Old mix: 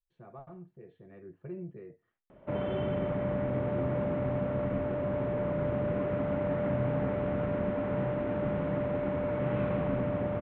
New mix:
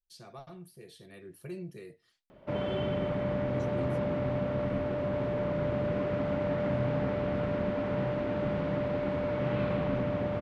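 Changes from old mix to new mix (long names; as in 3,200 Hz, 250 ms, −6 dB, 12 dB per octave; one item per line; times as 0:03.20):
speech: remove low-pass filter 1,500 Hz 12 dB per octave
master: remove moving average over 9 samples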